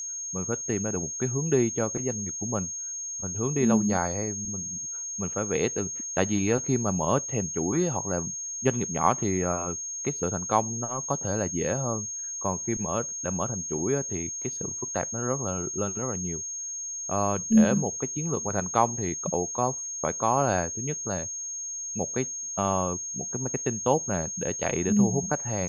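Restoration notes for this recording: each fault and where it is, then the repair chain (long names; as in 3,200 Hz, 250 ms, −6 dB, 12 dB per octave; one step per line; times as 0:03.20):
whistle 6,500 Hz −32 dBFS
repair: notch filter 6,500 Hz, Q 30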